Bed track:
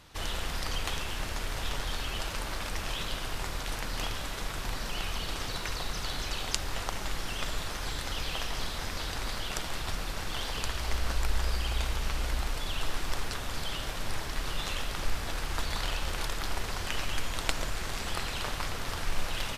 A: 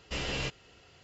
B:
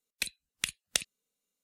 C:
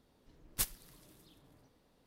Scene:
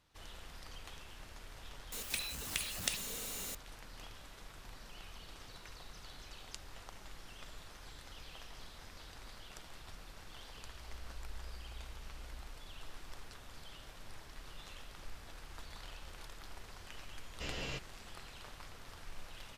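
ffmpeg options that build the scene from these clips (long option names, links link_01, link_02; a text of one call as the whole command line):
ffmpeg -i bed.wav -i cue0.wav -i cue1.wav -filter_complex "[0:a]volume=-17.5dB[link_01];[2:a]aeval=exprs='val(0)+0.5*0.0398*sgn(val(0))':channel_layout=same,atrim=end=1.63,asetpts=PTS-STARTPTS,volume=-8dB,afade=type=in:duration=0.004:curve=hsin,afade=type=out:start_time=1.626:duration=0.004:curve=hsin,adelay=1920[link_02];[1:a]atrim=end=1.03,asetpts=PTS-STARTPTS,volume=-8dB,afade=type=in:duration=0.004:curve=hsin,afade=type=out:start_time=1.026:duration=0.004:curve=hsin,adelay=17290[link_03];[link_01][link_02][link_03]amix=inputs=3:normalize=0" out.wav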